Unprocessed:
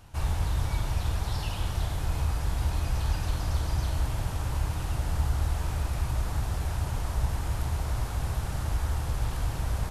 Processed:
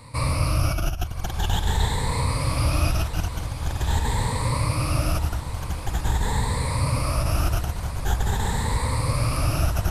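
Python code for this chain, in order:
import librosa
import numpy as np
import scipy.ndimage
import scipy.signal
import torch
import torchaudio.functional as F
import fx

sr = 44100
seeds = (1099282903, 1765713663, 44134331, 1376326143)

y = fx.spec_ripple(x, sr, per_octave=0.97, drift_hz=0.45, depth_db=18)
y = fx.over_compress(y, sr, threshold_db=-26.0, ratio=-0.5)
y = fx.echo_diffused(y, sr, ms=1110, feedback_pct=64, wet_db=-11)
y = y * librosa.db_to_amplitude(4.0)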